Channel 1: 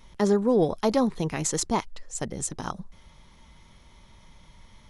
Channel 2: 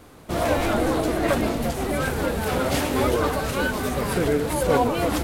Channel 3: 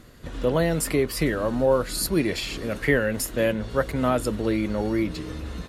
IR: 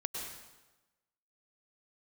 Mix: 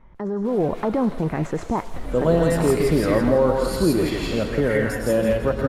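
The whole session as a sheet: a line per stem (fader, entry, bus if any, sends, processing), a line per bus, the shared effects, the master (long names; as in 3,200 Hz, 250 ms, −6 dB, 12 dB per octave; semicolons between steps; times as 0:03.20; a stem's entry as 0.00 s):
+1.0 dB, 0.00 s, bus A, send −24 dB, no echo send, no processing
−19.5 dB, 0.15 s, no bus, no send, echo send −7 dB, high-pass filter 610 Hz; downward compressor, threshold −25 dBFS, peak gain reduction 6.5 dB
−11.5 dB, 1.70 s, bus A, send −6.5 dB, echo send −6.5 dB, automatic gain control
bus A: 0.0 dB, low-pass filter 2,000 Hz 24 dB per octave; brickwall limiter −21 dBFS, peak gain reduction 11 dB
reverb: on, RT60 1.1 s, pre-delay 93 ms
echo: repeating echo 166 ms, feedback 38%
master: high-shelf EQ 5,800 Hz −7.5 dB; automatic gain control gain up to 7 dB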